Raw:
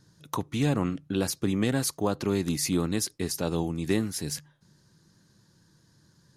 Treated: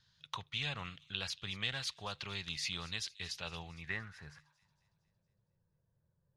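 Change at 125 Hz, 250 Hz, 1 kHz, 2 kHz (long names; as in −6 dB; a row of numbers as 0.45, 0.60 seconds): −16.5, −24.5, −11.0, −2.0 decibels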